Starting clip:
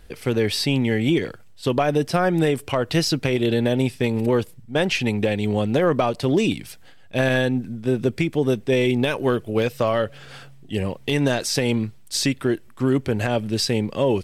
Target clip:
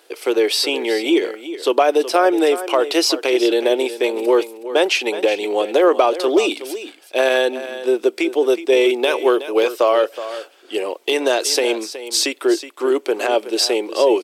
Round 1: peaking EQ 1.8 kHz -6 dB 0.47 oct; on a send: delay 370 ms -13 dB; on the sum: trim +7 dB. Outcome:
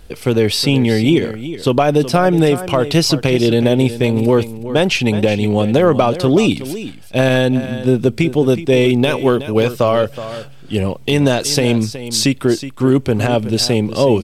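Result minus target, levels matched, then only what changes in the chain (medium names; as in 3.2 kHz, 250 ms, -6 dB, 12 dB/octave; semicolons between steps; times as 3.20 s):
250 Hz band +4.5 dB
add first: elliptic high-pass 340 Hz, stop band 60 dB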